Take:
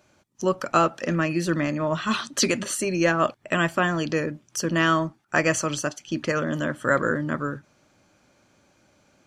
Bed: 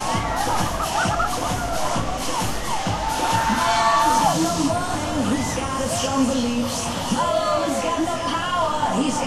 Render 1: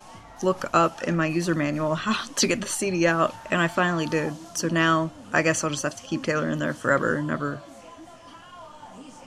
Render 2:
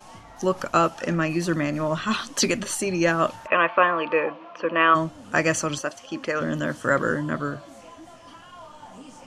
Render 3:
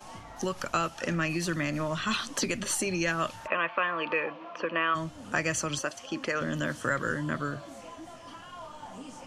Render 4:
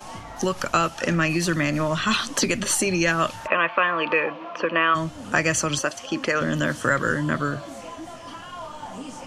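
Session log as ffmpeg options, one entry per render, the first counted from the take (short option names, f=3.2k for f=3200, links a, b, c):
-filter_complex "[1:a]volume=-22.5dB[a];[0:a][a]amix=inputs=2:normalize=0"
-filter_complex "[0:a]asplit=3[a][b][c];[a]afade=t=out:st=3.46:d=0.02[d];[b]highpass=380,equalizer=f=520:t=q:w=4:g=9,equalizer=f=1.1k:t=q:w=4:g=10,equalizer=f=2.5k:t=q:w=4:g=9,lowpass=f=2.8k:w=0.5412,lowpass=f=2.8k:w=1.3066,afade=t=in:st=3.46:d=0.02,afade=t=out:st=4.94:d=0.02[e];[c]afade=t=in:st=4.94:d=0.02[f];[d][e][f]amix=inputs=3:normalize=0,asettb=1/sr,asplit=3[g][h][i];[g]atrim=end=5.784[j];[h]atrim=start=5.78:end=6.41,asetpts=PTS-STARTPTS,afade=t=in:d=0.004:c=qsin,afade=t=out:st=0.626:d=0.004:c=qsin,bass=f=250:g=-12,treble=f=4k:g=-6[k];[i]atrim=start=6.406[l];[j][k]acrossfade=d=0.004:c1=hsin:c2=qsin[m];[m][l]acrossfade=d=0.004:c1=qsin:c2=hsin"
-filter_complex "[0:a]acrossover=split=120|1600[a][b][c];[b]acompressor=threshold=-30dB:ratio=6[d];[c]alimiter=limit=-20dB:level=0:latency=1:release=295[e];[a][d][e]amix=inputs=3:normalize=0"
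-af "volume=7.5dB"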